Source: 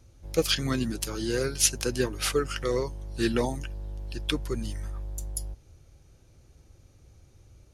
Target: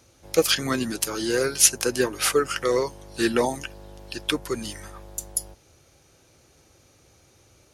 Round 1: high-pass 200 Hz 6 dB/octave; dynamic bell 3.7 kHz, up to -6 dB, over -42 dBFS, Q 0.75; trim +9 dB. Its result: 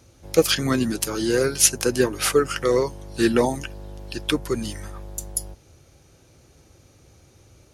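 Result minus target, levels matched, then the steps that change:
250 Hz band +3.0 dB
change: high-pass 510 Hz 6 dB/octave

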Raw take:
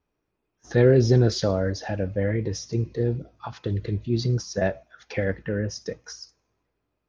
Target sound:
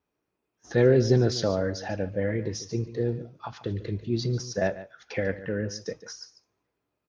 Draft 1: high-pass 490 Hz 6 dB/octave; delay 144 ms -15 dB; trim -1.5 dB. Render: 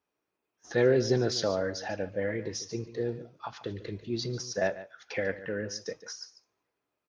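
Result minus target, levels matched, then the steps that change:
125 Hz band -5.0 dB
change: high-pass 130 Hz 6 dB/octave

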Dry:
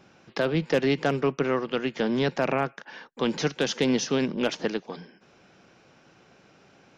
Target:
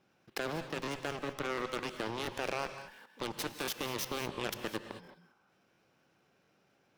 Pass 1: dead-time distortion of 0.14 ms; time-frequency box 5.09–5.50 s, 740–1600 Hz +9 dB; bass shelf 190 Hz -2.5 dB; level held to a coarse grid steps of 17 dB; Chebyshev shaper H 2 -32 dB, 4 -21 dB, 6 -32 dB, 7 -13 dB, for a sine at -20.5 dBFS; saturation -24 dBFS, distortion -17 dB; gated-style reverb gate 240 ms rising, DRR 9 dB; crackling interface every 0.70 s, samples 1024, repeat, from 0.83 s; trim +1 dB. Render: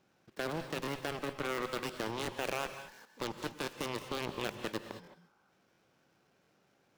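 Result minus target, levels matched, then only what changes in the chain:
dead-time distortion: distortion +9 dB
change: dead-time distortion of 0.037 ms

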